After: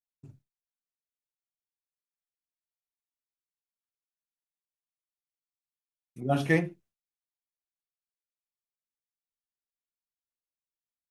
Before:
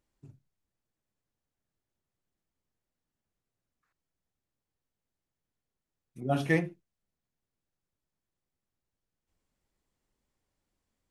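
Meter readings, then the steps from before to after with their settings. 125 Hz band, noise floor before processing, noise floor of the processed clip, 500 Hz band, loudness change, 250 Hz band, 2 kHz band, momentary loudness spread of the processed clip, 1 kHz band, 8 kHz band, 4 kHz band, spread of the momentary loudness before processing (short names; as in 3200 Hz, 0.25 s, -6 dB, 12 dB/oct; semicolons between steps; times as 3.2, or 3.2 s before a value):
+2.0 dB, under -85 dBFS, under -85 dBFS, +2.0 dB, +2.0 dB, +2.0 dB, +2.0 dB, 13 LU, +2.0 dB, +2.0 dB, +2.0 dB, 13 LU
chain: expander -57 dBFS; gain +2 dB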